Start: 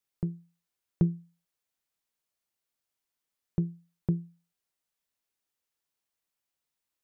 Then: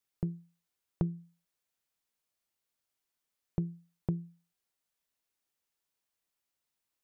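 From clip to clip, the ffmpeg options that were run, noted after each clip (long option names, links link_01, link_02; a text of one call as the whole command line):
ffmpeg -i in.wav -af "acompressor=threshold=-29dB:ratio=3" out.wav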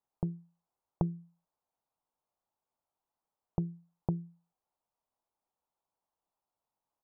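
ffmpeg -i in.wav -af "firequalizer=gain_entry='entry(370,0);entry(850,10);entry(1800,-14)':delay=0.05:min_phase=1" out.wav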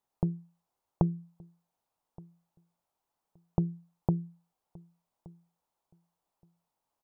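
ffmpeg -i in.wav -filter_complex "[0:a]asplit=2[link_01][link_02];[link_02]adelay=1172,lowpass=frequency=1000:poles=1,volume=-23dB,asplit=2[link_03][link_04];[link_04]adelay=1172,lowpass=frequency=1000:poles=1,volume=0.18[link_05];[link_01][link_03][link_05]amix=inputs=3:normalize=0,volume=4.5dB" out.wav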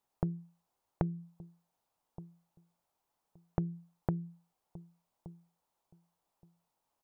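ffmpeg -i in.wav -af "acompressor=threshold=-32dB:ratio=3,volume=1.5dB" out.wav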